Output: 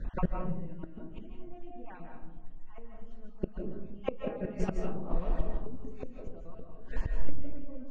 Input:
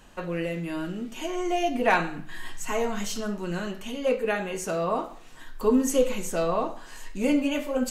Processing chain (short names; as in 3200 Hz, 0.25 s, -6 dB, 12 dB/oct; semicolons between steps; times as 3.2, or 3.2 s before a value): random spectral dropouts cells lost 36%; RIAA curve playback; compressor 6:1, threshold -16 dBFS, peak gain reduction 9 dB; air absorption 150 m; tape echo 0.342 s, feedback 53%, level -17 dB, low-pass 1100 Hz; flipped gate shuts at -19 dBFS, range -27 dB; reverb RT60 0.90 s, pre-delay 0.12 s, DRR 2.5 dB; gain +2.5 dB